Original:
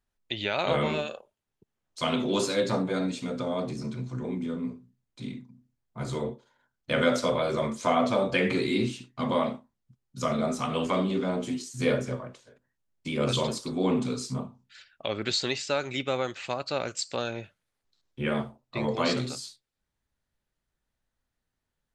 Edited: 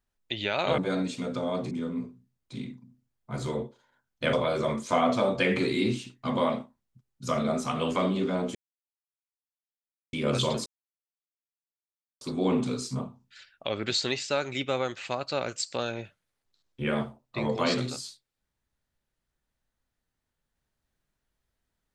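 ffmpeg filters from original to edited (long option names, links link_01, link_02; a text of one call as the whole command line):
ffmpeg -i in.wav -filter_complex "[0:a]asplit=7[link_01][link_02][link_03][link_04][link_05][link_06][link_07];[link_01]atrim=end=0.782[link_08];[link_02]atrim=start=2.818:end=3.752[link_09];[link_03]atrim=start=4.378:end=7.002[link_10];[link_04]atrim=start=7.268:end=11.49,asetpts=PTS-STARTPTS,afade=type=out:start_time=4.218:duration=0.004:curve=hsin[link_11];[link_05]atrim=start=11.49:end=13.07,asetpts=PTS-STARTPTS,volume=0[link_12];[link_06]atrim=start=13.07:end=13.6,asetpts=PTS-STARTPTS,afade=type=in:duration=0.004:curve=hsin,afade=type=out:start_time=0.526:duration=0.004:curve=hsin,apad=pad_dur=1.55[link_13];[link_07]atrim=start=13.6,asetpts=PTS-STARTPTS,afade=type=in:duration=0.004:curve=hsin[link_14];[link_08][link_09]acrossfade=duration=0.004:curve1=hsin:curve2=hsin[link_15];[link_15][link_10]acrossfade=duration=0.004:curve1=hsin:curve2=hsin[link_16];[link_11][link_12][link_13][link_14]concat=n=4:v=0:a=1[link_17];[link_16][link_17]acrossfade=duration=0.004:curve1=hsin:curve2=hsin" out.wav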